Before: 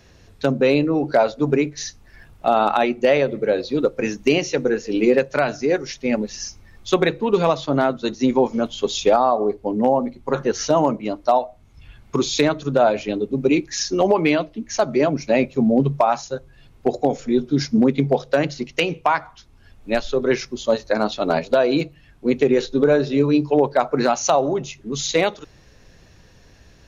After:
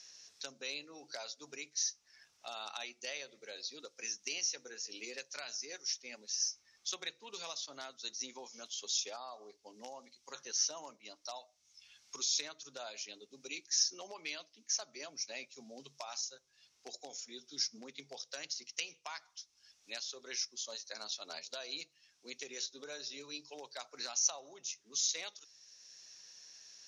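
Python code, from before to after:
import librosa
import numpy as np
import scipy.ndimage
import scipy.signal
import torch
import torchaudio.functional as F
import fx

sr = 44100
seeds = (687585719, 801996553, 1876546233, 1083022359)

y = fx.bandpass_q(x, sr, hz=5700.0, q=4.4)
y = fx.band_squash(y, sr, depth_pct=40)
y = F.gain(torch.from_numpy(y), 1.0).numpy()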